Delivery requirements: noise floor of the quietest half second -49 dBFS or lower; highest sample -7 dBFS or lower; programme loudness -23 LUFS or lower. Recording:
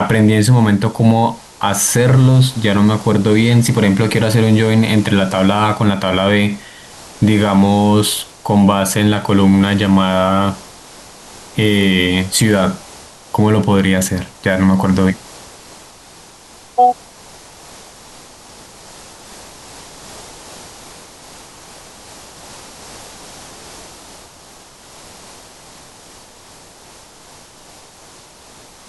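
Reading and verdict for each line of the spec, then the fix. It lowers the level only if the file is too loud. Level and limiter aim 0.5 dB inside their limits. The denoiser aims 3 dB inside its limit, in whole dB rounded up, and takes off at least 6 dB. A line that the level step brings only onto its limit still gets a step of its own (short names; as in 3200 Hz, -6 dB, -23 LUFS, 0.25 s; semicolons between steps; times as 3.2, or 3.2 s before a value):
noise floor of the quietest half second -42 dBFS: fail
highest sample -1.5 dBFS: fail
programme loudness -13.5 LUFS: fail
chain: gain -10 dB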